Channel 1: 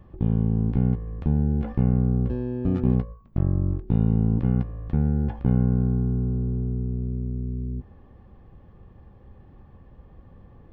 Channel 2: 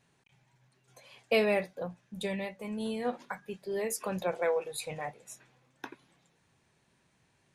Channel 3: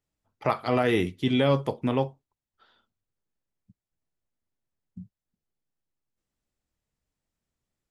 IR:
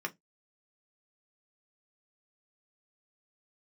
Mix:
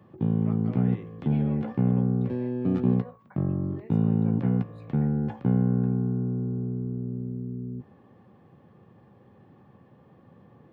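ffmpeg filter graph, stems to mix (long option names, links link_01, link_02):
-filter_complex "[0:a]highpass=frequency=120:width=0.5412,highpass=frequency=120:width=1.3066,volume=0dB[link_01];[1:a]volume=-15.5dB[link_02];[2:a]volume=-15.5dB[link_03];[link_02][link_03]amix=inputs=2:normalize=0,lowpass=2100,alimiter=level_in=8dB:limit=-24dB:level=0:latency=1:release=498,volume=-8dB,volume=0dB[link_04];[link_01][link_04]amix=inputs=2:normalize=0,highpass=68"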